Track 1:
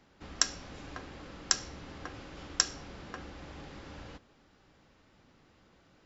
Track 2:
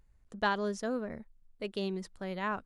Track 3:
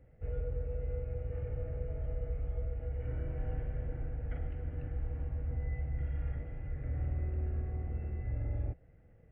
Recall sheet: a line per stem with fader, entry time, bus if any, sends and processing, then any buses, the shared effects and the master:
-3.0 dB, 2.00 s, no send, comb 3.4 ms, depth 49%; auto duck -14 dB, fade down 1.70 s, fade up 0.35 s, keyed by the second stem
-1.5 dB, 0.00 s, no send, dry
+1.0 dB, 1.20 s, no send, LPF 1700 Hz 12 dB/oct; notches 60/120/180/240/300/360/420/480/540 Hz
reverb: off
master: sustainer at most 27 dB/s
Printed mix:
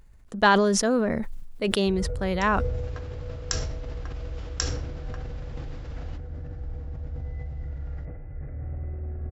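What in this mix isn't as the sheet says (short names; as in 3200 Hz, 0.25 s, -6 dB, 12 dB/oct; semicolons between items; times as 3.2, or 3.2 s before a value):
stem 1: missing comb 3.4 ms, depth 49%; stem 2 -1.5 dB -> +10.5 dB; stem 3: entry 1.20 s -> 1.65 s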